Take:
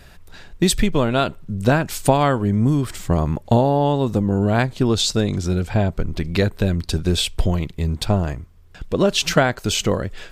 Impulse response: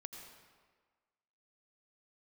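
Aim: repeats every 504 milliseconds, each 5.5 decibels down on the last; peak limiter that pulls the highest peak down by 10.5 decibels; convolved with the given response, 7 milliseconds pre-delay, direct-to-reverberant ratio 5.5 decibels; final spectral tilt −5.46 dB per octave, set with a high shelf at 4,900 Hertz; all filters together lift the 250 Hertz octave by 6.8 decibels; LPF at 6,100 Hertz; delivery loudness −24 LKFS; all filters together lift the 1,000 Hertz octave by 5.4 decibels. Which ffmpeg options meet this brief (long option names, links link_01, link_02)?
-filter_complex "[0:a]lowpass=6100,equalizer=frequency=250:width_type=o:gain=8.5,equalizer=frequency=1000:width_type=o:gain=6.5,highshelf=frequency=4900:gain=4.5,alimiter=limit=-7.5dB:level=0:latency=1,aecho=1:1:504|1008|1512|2016|2520|3024|3528:0.531|0.281|0.149|0.079|0.0419|0.0222|0.0118,asplit=2[link_01][link_02];[1:a]atrim=start_sample=2205,adelay=7[link_03];[link_02][link_03]afir=irnorm=-1:irlink=0,volume=-1.5dB[link_04];[link_01][link_04]amix=inputs=2:normalize=0,volume=-7.5dB"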